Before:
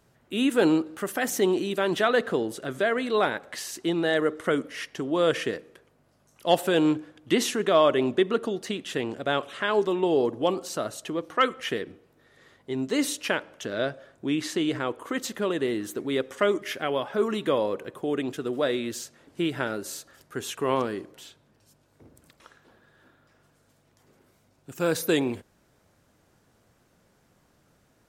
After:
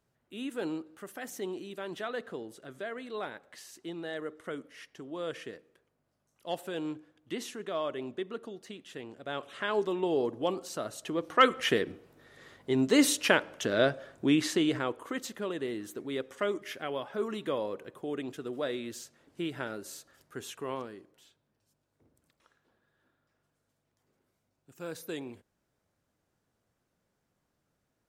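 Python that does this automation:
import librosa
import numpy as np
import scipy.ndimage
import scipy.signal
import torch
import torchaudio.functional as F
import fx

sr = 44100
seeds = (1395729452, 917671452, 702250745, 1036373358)

y = fx.gain(x, sr, db=fx.line((9.17, -14.0), (9.59, -6.0), (10.86, -6.0), (11.55, 2.5), (14.25, 2.5), (15.37, -8.0), (20.44, -8.0), (20.98, -15.0)))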